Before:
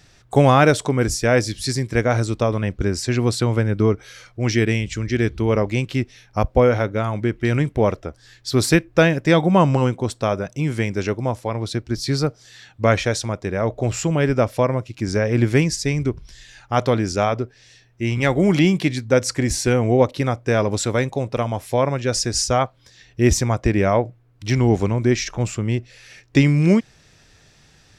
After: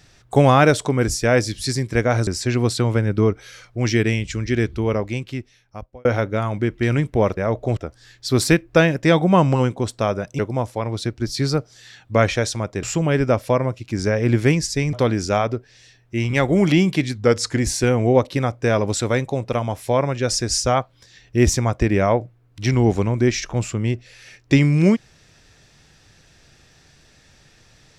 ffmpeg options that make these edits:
ffmpeg -i in.wav -filter_complex "[0:a]asplit=10[link_01][link_02][link_03][link_04][link_05][link_06][link_07][link_08][link_09][link_10];[link_01]atrim=end=2.272[link_11];[link_02]atrim=start=2.888:end=6.67,asetpts=PTS-STARTPTS,afade=type=out:start_time=2.282:duration=1.5[link_12];[link_03]atrim=start=6.67:end=7.992,asetpts=PTS-STARTPTS,afade=type=in:duration=0.004:curve=hsin[link_13];[link_04]atrim=start=13.518:end=13.922[link_14];[link_05]atrim=start=7.988:end=10.612[link_15];[link_06]atrim=start=11.078:end=13.522[link_16];[link_07]atrim=start=13.918:end=16.022[link_17];[link_08]atrim=start=16.798:end=19.024[link_18];[link_09]atrim=start=19.02:end=19.42,asetpts=PTS-STARTPTS,asetrate=41013,aresample=44100[link_19];[link_10]atrim=start=19.416[link_20];[link_12][link_13]concat=n=2:v=0:a=1[link_21];[link_11][link_21]acrossfade=duration=0.004:curve1=hsin:curve2=hsin[link_22];[link_22][link_14]acrossfade=duration=0.004:curve1=hsin:curve2=hsin[link_23];[link_23][link_15]acrossfade=duration=0.004:curve1=hsin:curve2=hsin[link_24];[link_24][link_16]acrossfade=duration=0.004:curve1=hsin:curve2=hsin[link_25];[link_25][link_17]acrossfade=duration=0.004:curve1=hsin:curve2=hsin[link_26];[link_26][link_18]acrossfade=duration=0.004:curve1=hsin:curve2=hsin[link_27];[link_27][link_19]acrossfade=duration=0.004:curve1=hsin:curve2=hsin[link_28];[link_28][link_20]acrossfade=duration=0.004:curve1=hsin:curve2=hsin" out.wav

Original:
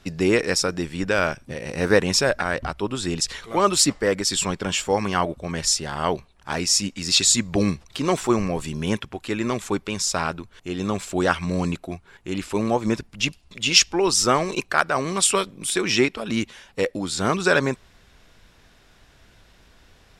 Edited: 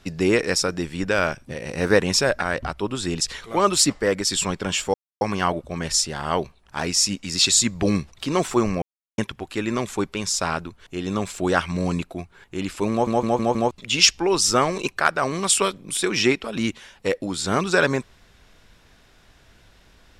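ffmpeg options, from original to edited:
ffmpeg -i in.wav -filter_complex "[0:a]asplit=9[link_01][link_02][link_03][link_04][link_05][link_06][link_07][link_08][link_09];[link_01]atrim=end=4.94,asetpts=PTS-STARTPTS,afade=type=out:start_time=4.936:duration=0.004:curve=hsin,apad=pad_dur=0.27[link_10];[link_02]atrim=start=4.94:end=8.55,asetpts=PTS-STARTPTS,afade=type=in:duration=0.004:curve=hsin,afade=type=out:start_time=3.606:duration=0.004:curve=hsin[link_11];[link_03]atrim=start=8.55:end=8.91,asetpts=PTS-STARTPTS,volume=0[link_12];[link_04]atrim=start=8.91:end=12.802,asetpts=PTS-STARTPTS,afade=type=in:duration=0.004:curve=hsin[link_13];[link_05]atrim=start=12.638:end=12.802[link_14];[link_06]atrim=start=12.638:end=12.802[link_15];[link_07]atrim=start=12.638:end=12.802[link_16];[link_08]atrim=start=12.638:end=12.802[link_17];[link_09]atrim=start=13.438[link_18];[link_10][link_11][link_12][link_13]concat=n=4:v=0:a=1[link_19];[link_19][link_14]acrossfade=duration=0.004:curve1=hsin:curve2=hsin[link_20];[link_20][link_15]acrossfade=duration=0.004:curve1=hsin:curve2=hsin[link_21];[link_21][link_16]acrossfade=duration=0.004:curve1=hsin:curve2=hsin[link_22];[link_22][link_17]acrossfade=duration=0.004:curve1=hsin:curve2=hsin[link_23];[link_23][link_18]acrossfade=duration=0.004:curve1=hsin:curve2=hsin" out.wav

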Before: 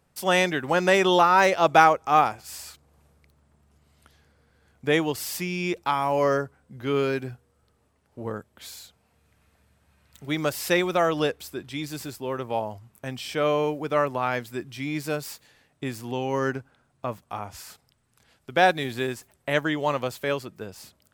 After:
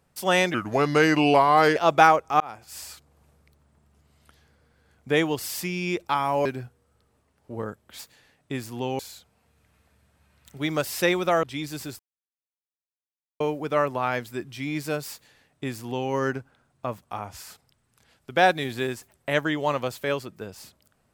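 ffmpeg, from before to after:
ffmpeg -i in.wav -filter_complex "[0:a]asplit=10[link_01][link_02][link_03][link_04][link_05][link_06][link_07][link_08][link_09][link_10];[link_01]atrim=end=0.544[link_11];[link_02]atrim=start=0.54:end=1.53,asetpts=PTS-STARTPTS,asetrate=35721,aresample=44100[link_12];[link_03]atrim=start=1.526:end=2.17,asetpts=PTS-STARTPTS,afade=type=out:start_time=0.64:duration=0.004:curve=hsin[link_13];[link_04]atrim=start=2.17:end=6.222,asetpts=PTS-STARTPTS,afade=type=in:duration=0.39[link_14];[link_05]atrim=start=7.128:end=8.672[link_15];[link_06]atrim=start=15.308:end=16.312[link_16];[link_07]atrim=start=8.668:end=11.112[link_17];[link_08]atrim=start=11.628:end=12.19,asetpts=PTS-STARTPTS,afade=type=out:start_time=0.558:duration=0.004:curve=hsin[link_18];[link_09]atrim=start=12.19:end=13.6,asetpts=PTS-STARTPTS,volume=0[link_19];[link_10]atrim=start=13.6,asetpts=PTS-STARTPTS,afade=type=in:duration=0.004:curve=hsin[link_20];[link_11][link_12]acrossfade=duration=0.004:curve1=hsin:curve2=hsin[link_21];[link_13][link_14]concat=n=2:v=0:a=1[link_22];[link_21][link_22]acrossfade=duration=0.004:curve1=hsin:curve2=hsin[link_23];[link_23][link_15]acrossfade=duration=0.004:curve1=hsin:curve2=hsin[link_24];[link_24][link_16]acrossfade=duration=0.004:curve1=hsin:curve2=hsin[link_25];[link_25][link_17]acrossfade=duration=0.004:curve1=hsin:curve2=hsin[link_26];[link_18][link_19][link_20]concat=n=3:v=0:a=1[link_27];[link_26][link_27]acrossfade=duration=0.004:curve1=hsin:curve2=hsin" out.wav

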